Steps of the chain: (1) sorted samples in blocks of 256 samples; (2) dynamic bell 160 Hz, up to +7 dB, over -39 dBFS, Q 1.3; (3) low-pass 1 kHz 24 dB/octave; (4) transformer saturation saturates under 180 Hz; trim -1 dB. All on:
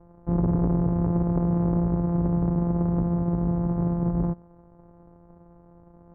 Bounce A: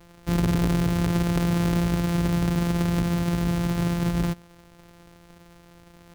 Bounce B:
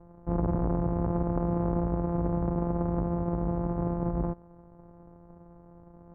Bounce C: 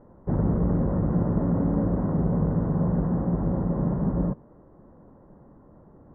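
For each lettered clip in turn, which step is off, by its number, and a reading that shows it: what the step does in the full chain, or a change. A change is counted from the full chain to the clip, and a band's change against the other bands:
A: 3, 1 kHz band +2.5 dB; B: 2, loudness change -5.0 LU; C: 1, 500 Hz band +1.5 dB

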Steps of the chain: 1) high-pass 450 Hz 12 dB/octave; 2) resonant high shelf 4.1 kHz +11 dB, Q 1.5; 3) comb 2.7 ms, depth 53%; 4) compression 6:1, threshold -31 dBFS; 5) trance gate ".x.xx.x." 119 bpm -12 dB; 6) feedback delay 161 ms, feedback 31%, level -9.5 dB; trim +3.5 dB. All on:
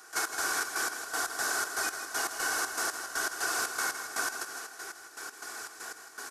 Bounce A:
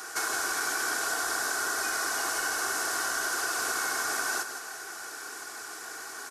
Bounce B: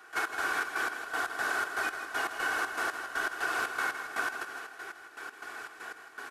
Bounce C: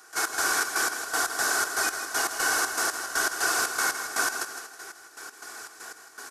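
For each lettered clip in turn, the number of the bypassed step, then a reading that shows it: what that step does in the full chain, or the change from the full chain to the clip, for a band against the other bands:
5, crest factor change -2.5 dB; 2, 8 kHz band -13.0 dB; 4, mean gain reduction 4.0 dB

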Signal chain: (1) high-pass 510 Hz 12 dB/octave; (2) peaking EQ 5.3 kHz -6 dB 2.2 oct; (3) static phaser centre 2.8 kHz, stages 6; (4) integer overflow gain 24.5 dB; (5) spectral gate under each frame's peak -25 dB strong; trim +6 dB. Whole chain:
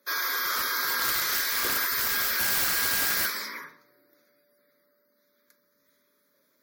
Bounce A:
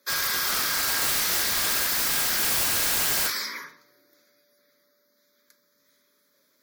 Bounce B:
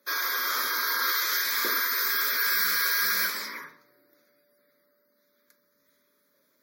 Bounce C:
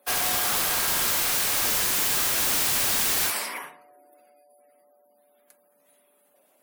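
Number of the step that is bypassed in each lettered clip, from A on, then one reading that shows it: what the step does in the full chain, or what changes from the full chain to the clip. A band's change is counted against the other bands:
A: 2, 2 kHz band -4.0 dB; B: 4, distortion -3 dB; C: 3, 2 kHz band -7.5 dB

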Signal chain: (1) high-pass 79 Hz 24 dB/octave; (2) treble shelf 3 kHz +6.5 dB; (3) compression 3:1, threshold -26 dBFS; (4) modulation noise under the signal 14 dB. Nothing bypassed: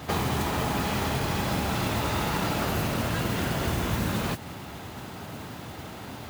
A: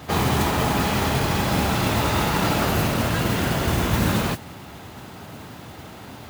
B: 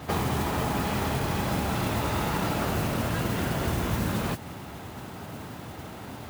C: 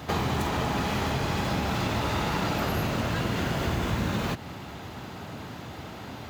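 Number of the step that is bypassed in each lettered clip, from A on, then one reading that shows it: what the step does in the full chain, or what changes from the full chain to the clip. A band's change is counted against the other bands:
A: 3, mean gain reduction 4.0 dB; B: 2, 4 kHz band -3.0 dB; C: 4, 8 kHz band -4.0 dB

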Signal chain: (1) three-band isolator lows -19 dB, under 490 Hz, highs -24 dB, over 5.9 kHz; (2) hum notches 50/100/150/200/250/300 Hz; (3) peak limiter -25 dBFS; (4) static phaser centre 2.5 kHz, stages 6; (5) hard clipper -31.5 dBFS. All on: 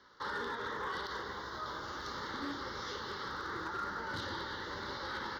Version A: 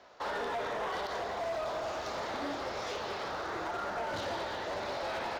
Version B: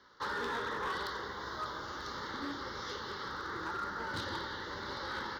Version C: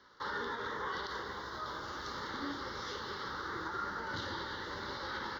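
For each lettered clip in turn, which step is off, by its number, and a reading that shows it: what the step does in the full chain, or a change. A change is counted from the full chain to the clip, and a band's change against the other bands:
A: 4, 500 Hz band +8.0 dB; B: 3, momentary loudness spread change +2 LU; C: 5, distortion -27 dB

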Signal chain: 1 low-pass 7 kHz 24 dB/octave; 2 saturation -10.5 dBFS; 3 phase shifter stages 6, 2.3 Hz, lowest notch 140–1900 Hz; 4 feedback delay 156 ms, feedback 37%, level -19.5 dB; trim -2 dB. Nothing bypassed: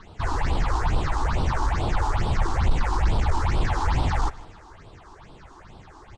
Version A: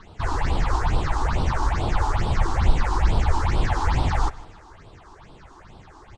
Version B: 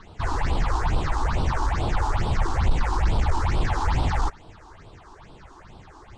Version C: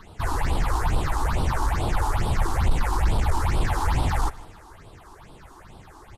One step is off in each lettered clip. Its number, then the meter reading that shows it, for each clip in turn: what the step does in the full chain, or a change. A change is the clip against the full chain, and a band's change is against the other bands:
2, distortion -17 dB; 4, momentary loudness spread change -1 LU; 1, 8 kHz band +4.5 dB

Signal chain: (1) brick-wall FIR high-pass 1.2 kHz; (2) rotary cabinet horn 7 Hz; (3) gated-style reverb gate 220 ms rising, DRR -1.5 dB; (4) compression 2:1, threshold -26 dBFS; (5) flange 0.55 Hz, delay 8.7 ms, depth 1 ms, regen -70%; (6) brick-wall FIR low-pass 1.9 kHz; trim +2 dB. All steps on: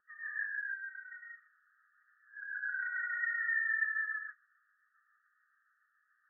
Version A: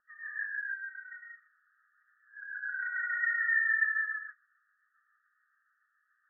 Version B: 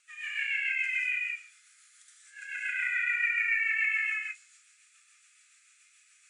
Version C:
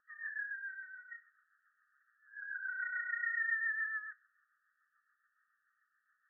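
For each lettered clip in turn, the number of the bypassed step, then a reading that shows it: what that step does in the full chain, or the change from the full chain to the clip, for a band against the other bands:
4, momentary loudness spread change +3 LU; 6, momentary loudness spread change -4 LU; 3, loudness change -2.5 LU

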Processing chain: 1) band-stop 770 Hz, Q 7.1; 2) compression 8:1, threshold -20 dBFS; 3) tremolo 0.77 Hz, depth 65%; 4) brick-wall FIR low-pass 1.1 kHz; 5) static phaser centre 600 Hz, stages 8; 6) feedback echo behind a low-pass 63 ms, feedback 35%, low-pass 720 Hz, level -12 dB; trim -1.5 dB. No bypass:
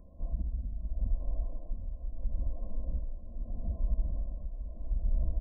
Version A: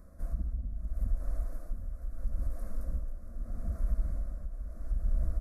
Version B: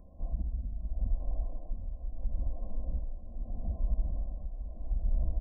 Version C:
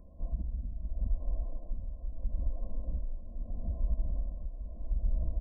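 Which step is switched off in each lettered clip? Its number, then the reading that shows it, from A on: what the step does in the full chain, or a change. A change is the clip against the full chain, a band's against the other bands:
4, 1 kHz band +2.5 dB; 1, 1 kHz band +3.5 dB; 6, echo-to-direct -19.0 dB to none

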